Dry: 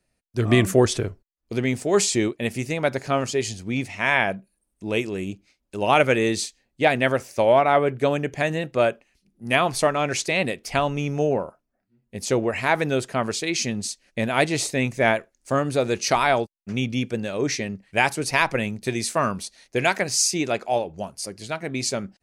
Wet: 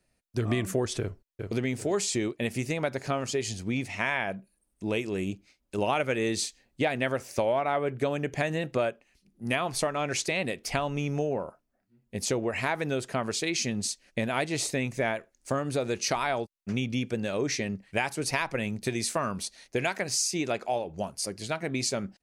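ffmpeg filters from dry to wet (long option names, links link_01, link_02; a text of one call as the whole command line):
ffmpeg -i in.wav -filter_complex "[0:a]asplit=2[link_01][link_02];[link_02]afade=type=in:start_time=1:duration=0.01,afade=type=out:start_time=1.53:duration=0.01,aecho=0:1:390|780|1170|1560|1950:0.354813|0.159666|0.0718497|0.0323324|0.0145496[link_03];[link_01][link_03]amix=inputs=2:normalize=0,asplit=3[link_04][link_05][link_06];[link_04]atrim=end=5.782[link_07];[link_05]atrim=start=5.778:end=8.902,asetpts=PTS-STARTPTS,volume=3dB[link_08];[link_06]atrim=start=8.898[link_09];[link_07][link_08]acrossfade=duration=0.004:curve1=hsin:curve2=hsin[link_10];[link_10][link_09]acrossfade=duration=0.004:curve1=hsin:curve2=hsin,acompressor=threshold=-26dB:ratio=4" out.wav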